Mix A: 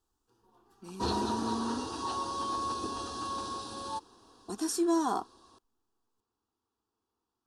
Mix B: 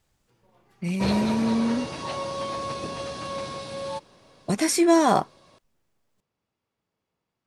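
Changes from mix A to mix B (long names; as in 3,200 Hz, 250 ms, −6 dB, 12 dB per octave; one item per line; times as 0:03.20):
speech +8.5 dB
master: remove phaser with its sweep stopped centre 580 Hz, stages 6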